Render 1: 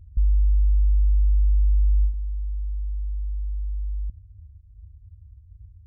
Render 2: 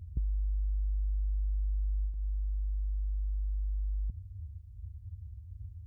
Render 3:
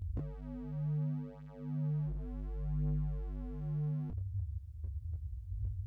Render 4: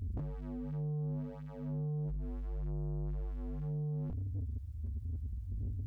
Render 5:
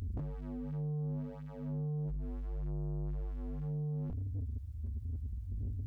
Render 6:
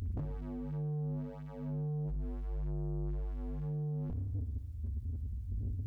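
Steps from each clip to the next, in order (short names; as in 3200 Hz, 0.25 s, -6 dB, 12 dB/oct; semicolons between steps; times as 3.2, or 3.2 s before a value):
HPF 72 Hz 12 dB/oct; compressor, threshold -35 dBFS, peak gain reduction 10.5 dB; gain +5 dB
in parallel at 0 dB: limiter -30 dBFS, peak gain reduction 7 dB; on the sum: wavefolder -29.5 dBFS; detuned doubles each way 12 cents; gain +1.5 dB
soft clip -39 dBFS, distortion -10 dB; gain +5 dB
upward compressor, threshold -50 dBFS
spring tank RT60 1.4 s, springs 57 ms, chirp 75 ms, DRR 11.5 dB; gain +1 dB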